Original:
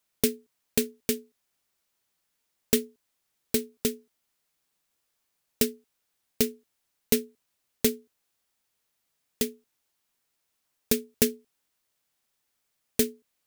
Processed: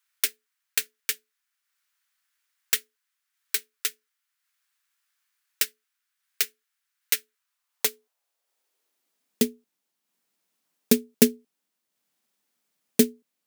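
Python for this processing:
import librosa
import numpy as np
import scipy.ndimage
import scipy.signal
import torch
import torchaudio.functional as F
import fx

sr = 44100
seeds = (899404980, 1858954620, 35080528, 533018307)

y = fx.filter_sweep_highpass(x, sr, from_hz=1500.0, to_hz=200.0, start_s=7.31, end_s=9.44, q=2.0)
y = fx.transient(y, sr, attack_db=3, sustain_db=-4)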